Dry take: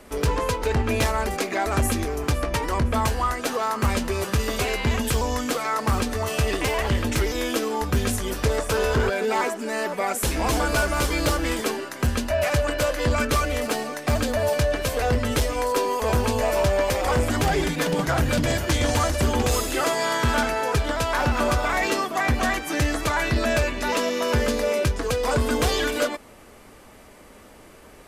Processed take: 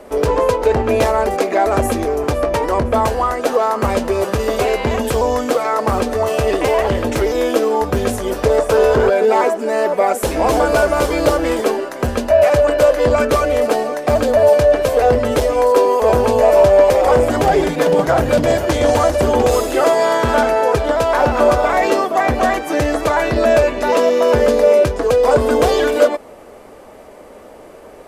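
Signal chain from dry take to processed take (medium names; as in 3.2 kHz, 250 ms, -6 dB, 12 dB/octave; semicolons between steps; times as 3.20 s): peaking EQ 560 Hz +13.5 dB 1.9 oct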